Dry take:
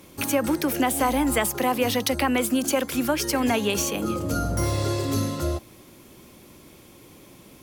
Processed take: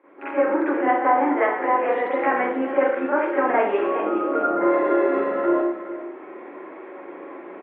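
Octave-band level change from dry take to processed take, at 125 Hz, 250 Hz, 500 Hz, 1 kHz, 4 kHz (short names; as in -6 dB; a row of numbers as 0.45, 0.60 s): under -20 dB, +0.5 dB, +6.5 dB, +6.5 dB, under -15 dB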